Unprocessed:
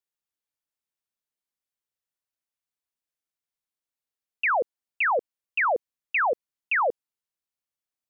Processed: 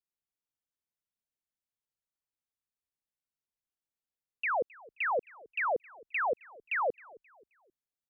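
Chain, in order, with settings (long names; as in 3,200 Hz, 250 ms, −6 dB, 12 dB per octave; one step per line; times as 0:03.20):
low-shelf EQ 390 Hz +9 dB
echo with shifted repeats 265 ms, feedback 38%, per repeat −37 Hz, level −23 dB
level −8.5 dB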